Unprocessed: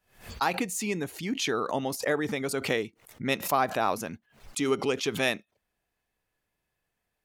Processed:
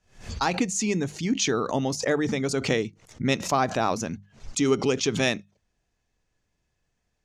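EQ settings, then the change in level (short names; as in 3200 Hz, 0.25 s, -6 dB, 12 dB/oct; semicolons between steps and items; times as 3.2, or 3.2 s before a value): synth low-pass 6400 Hz, resonance Q 2.8; low shelf 280 Hz +11.5 dB; notches 50/100/150/200 Hz; 0.0 dB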